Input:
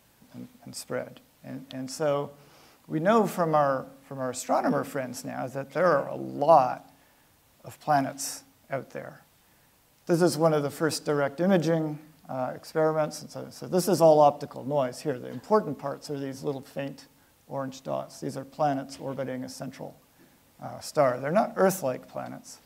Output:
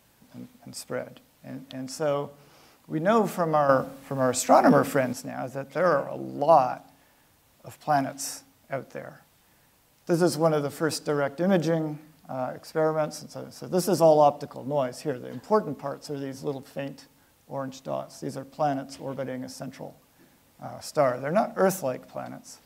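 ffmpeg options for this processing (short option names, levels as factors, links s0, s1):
-filter_complex "[0:a]asplit=3[s0][s1][s2];[s0]atrim=end=3.692[s3];[s1]atrim=start=3.688:end=5.132,asetpts=PTS-STARTPTS,volume=2.37[s4];[s2]atrim=start=5.128[s5];[s3][s4]acrossfade=d=0.004:c1=hsin:c2=hsin[s6];[s6][s5]acrossfade=d=0.004:c1=hsin:c2=hsin"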